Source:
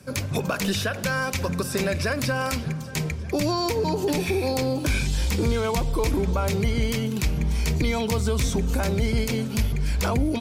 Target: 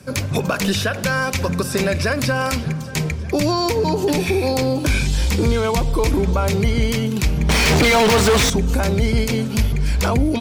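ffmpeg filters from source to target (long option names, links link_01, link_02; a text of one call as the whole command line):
ffmpeg -i in.wav -filter_complex "[0:a]highshelf=frequency=11000:gain=-3.5,asettb=1/sr,asplit=3[link_01][link_02][link_03];[link_01]atrim=end=7.494[link_04];[link_02]atrim=start=7.49:end=8.5,asetpts=PTS-STARTPTS,afade=type=in:duration=0.004:curve=qsin,afade=type=out:start_time=1.006:duration=0.004:curve=qsin,asplit=2[link_05][link_06];[link_06]highpass=frequency=720:poles=1,volume=36dB,asoftclip=type=tanh:threshold=-13dB[link_07];[link_05][link_07]amix=inputs=2:normalize=0,lowpass=frequency=3600:poles=1,volume=-6dB[link_08];[link_03]atrim=start=8.496[link_09];[link_04][link_08]acrossfade=duration=0.004:curve1=hsin:curve2=qsin[link_10];[link_10][link_09]acrossfade=duration=0.004:curve1=qsin:curve2=hsin,volume=5.5dB" out.wav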